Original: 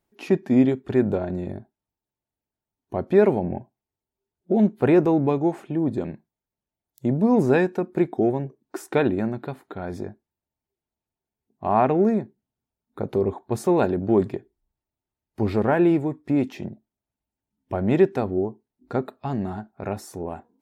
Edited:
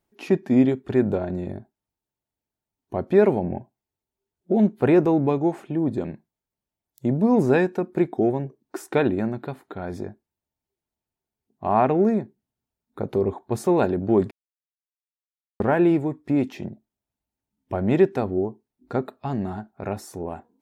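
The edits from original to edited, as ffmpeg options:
ffmpeg -i in.wav -filter_complex "[0:a]asplit=3[link_01][link_02][link_03];[link_01]atrim=end=14.31,asetpts=PTS-STARTPTS,afade=type=out:start_time=14.306:duration=0.004:curve=hsin[link_04];[link_02]atrim=start=14.31:end=15.6,asetpts=PTS-STARTPTS,volume=0[link_05];[link_03]atrim=start=15.6,asetpts=PTS-STARTPTS,afade=type=in:duration=0.004:curve=hsin[link_06];[link_04][link_05][link_06]concat=n=3:v=0:a=1" out.wav

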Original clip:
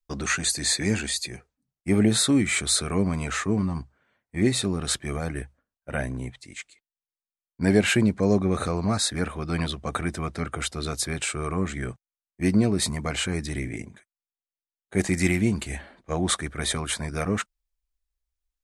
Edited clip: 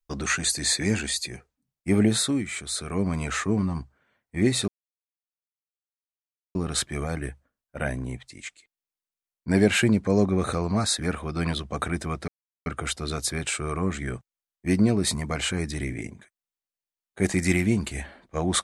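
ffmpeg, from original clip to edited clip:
ffmpeg -i in.wav -filter_complex "[0:a]asplit=5[link_01][link_02][link_03][link_04][link_05];[link_01]atrim=end=2.48,asetpts=PTS-STARTPTS,afade=type=out:start_time=2.02:duration=0.46:silence=0.375837[link_06];[link_02]atrim=start=2.48:end=2.71,asetpts=PTS-STARTPTS,volume=-8.5dB[link_07];[link_03]atrim=start=2.71:end=4.68,asetpts=PTS-STARTPTS,afade=type=in:duration=0.46:silence=0.375837,afade=type=out:start_time=1.966:duration=0.004:curve=hsin,apad=pad_dur=1.87[link_08];[link_04]atrim=start=4.68:end=10.41,asetpts=PTS-STARTPTS,afade=type=in:duration=0.004:curve=hsin,afade=type=out:start_time=5.726:duration=0.004:curve=hsin,apad=pad_dur=0.38[link_09];[link_05]atrim=start=10.41,asetpts=PTS-STARTPTS,afade=type=in:duration=0.004:curve=hsin[link_10];[link_06][link_07][link_08][link_09][link_10]concat=n=5:v=0:a=1" out.wav

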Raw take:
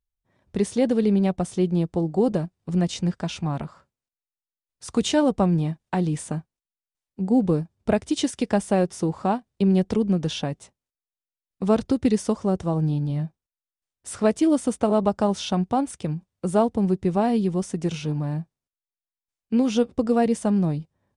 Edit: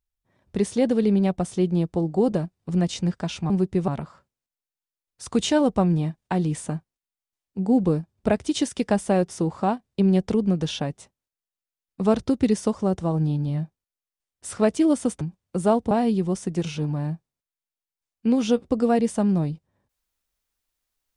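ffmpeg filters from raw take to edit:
ffmpeg -i in.wav -filter_complex "[0:a]asplit=5[link_01][link_02][link_03][link_04][link_05];[link_01]atrim=end=3.502[link_06];[link_02]atrim=start=16.798:end=17.182[link_07];[link_03]atrim=start=3.498:end=14.832[link_08];[link_04]atrim=start=16.098:end=16.802[link_09];[link_05]atrim=start=17.178[link_10];[link_06][link_07]acrossfade=duration=0.004:curve1=hsin:curve2=hsin[link_11];[link_11][link_08]acrossfade=duration=0.004:curve1=hsin:curve2=hsin[link_12];[link_12][link_09]acrossfade=duration=0.004:curve1=hsin:curve2=hsin[link_13];[link_13][link_10]acrossfade=duration=0.004:curve1=hsin:curve2=hsin" out.wav

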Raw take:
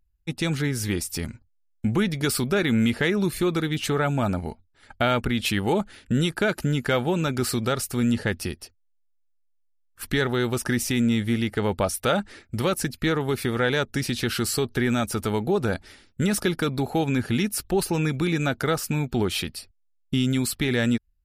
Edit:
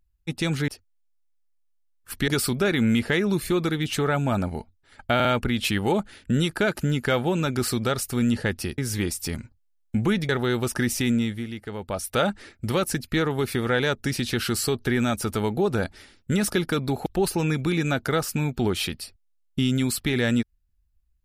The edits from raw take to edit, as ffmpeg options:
ffmpeg -i in.wav -filter_complex "[0:a]asplit=10[link_01][link_02][link_03][link_04][link_05][link_06][link_07][link_08][link_09][link_10];[link_01]atrim=end=0.682[link_11];[link_02]atrim=start=8.588:end=10.192[link_12];[link_03]atrim=start=2.188:end=5.112[link_13];[link_04]atrim=start=5.058:end=5.112[link_14];[link_05]atrim=start=5.058:end=8.592[link_15];[link_06]atrim=start=0.678:end=2.192[link_16];[link_07]atrim=start=10.188:end=11.35,asetpts=PTS-STARTPTS,afade=type=out:start_time=0.812:duration=0.35:silence=0.334965[link_17];[link_08]atrim=start=11.35:end=11.74,asetpts=PTS-STARTPTS,volume=-9.5dB[link_18];[link_09]atrim=start=11.74:end=16.962,asetpts=PTS-STARTPTS,afade=type=in:duration=0.35:silence=0.334965[link_19];[link_10]atrim=start=17.608[link_20];[link_11][link_12]acrossfade=duration=0.004:curve1=hsin:curve2=hsin[link_21];[link_21][link_13]acrossfade=duration=0.004:curve1=hsin:curve2=hsin[link_22];[link_22][link_14]acrossfade=duration=0.004:curve1=hsin:curve2=hsin[link_23];[link_23][link_15]acrossfade=duration=0.004:curve1=hsin:curve2=hsin[link_24];[link_24][link_16]acrossfade=duration=0.004:curve1=hsin:curve2=hsin[link_25];[link_17][link_18][link_19]concat=n=3:v=0:a=1[link_26];[link_25][link_26]acrossfade=duration=0.004:curve1=hsin:curve2=hsin[link_27];[link_27][link_20]acrossfade=duration=0.004:curve1=hsin:curve2=hsin" out.wav

